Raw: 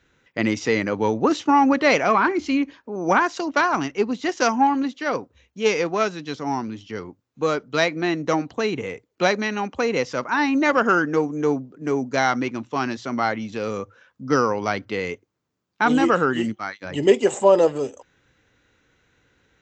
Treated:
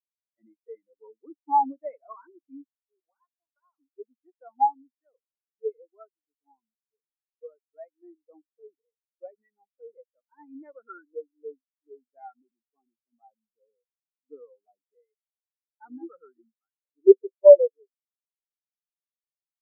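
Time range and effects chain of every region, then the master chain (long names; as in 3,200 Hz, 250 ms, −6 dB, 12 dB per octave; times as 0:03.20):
0:03.00–0:03.79: high-pass filter 590 Hz + downward compressor 12 to 1, threshold −20 dBFS
0:12.40–0:14.84: low-pass filter 1,100 Hz + level that may fall only so fast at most 62 dB per second
whole clip: bass and treble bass −8 dB, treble −8 dB; every bin expanded away from the loudest bin 4 to 1; level +2 dB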